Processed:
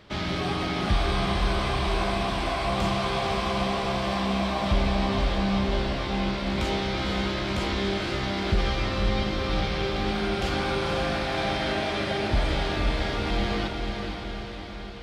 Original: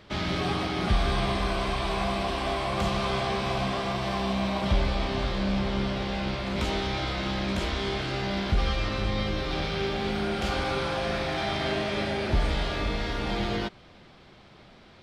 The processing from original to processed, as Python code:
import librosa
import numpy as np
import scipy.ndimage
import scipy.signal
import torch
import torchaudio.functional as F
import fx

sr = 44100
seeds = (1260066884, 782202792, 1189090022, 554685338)

y = fx.echo_diffused(x, sr, ms=496, feedback_pct=62, wet_db=-5.0)